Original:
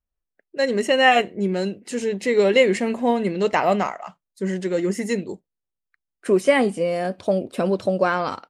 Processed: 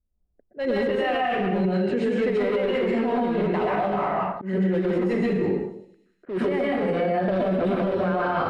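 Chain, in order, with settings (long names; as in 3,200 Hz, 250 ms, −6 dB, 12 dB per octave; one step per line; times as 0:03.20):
high-shelf EQ 5,300 Hz +6.5 dB
in parallel at −9.5 dB: wrap-around overflow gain 15.5 dB
on the sum: dense smooth reverb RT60 0.77 s, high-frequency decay 0.85×, pre-delay 110 ms, DRR −5.5 dB
downward compressor 10 to 1, threshold −20 dBFS, peak gain reduction 16.5 dB
low-pass that shuts in the quiet parts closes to 440 Hz, open at −19.5 dBFS
high-frequency loss of the air 450 metres
delay with a high-pass on its return 98 ms, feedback 78%, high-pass 5,600 Hz, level −18 dB
brickwall limiter −22 dBFS, peak gain reduction 9 dB
volume swells 157 ms
level +6 dB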